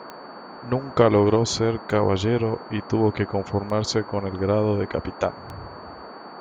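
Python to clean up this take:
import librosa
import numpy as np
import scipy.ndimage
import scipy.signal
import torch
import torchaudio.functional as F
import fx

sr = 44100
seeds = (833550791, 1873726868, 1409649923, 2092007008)

y = fx.fix_declick_ar(x, sr, threshold=10.0)
y = fx.notch(y, sr, hz=4500.0, q=30.0)
y = fx.noise_reduce(y, sr, print_start_s=0.12, print_end_s=0.62, reduce_db=28.0)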